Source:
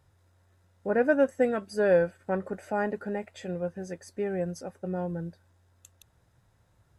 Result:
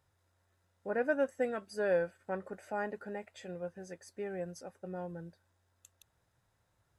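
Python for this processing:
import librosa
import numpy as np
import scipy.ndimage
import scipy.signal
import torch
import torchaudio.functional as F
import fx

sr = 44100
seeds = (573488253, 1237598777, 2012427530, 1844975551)

y = fx.low_shelf(x, sr, hz=380.0, db=-7.0)
y = y * librosa.db_to_amplitude(-5.5)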